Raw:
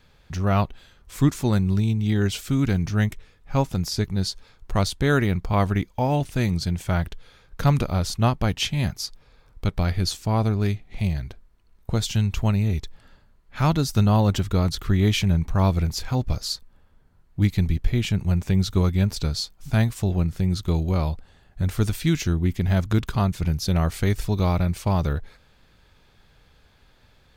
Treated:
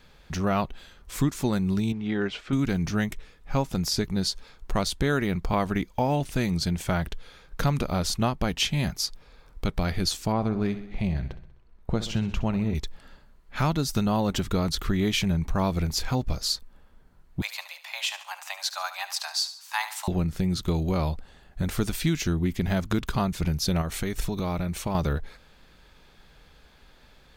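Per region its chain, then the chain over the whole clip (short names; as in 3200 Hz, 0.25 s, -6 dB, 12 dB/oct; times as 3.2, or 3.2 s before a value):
1.92–2.53 block floating point 7-bit + LPF 2200 Hz + low shelf 240 Hz -10.5 dB
10.32–12.75 LPF 1900 Hz 6 dB/oct + feedback echo 64 ms, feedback 57%, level -15 dB
17.41–20.08 steep high-pass 590 Hz + feedback echo 72 ms, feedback 40%, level -13 dB + frequency shift +200 Hz
23.81–24.95 notch 4800 Hz, Q 11 + compressor, threshold -23 dBFS
whole clip: bell 100 Hz -11.5 dB 0.51 oct; compressor 3:1, threshold -25 dBFS; gain +3 dB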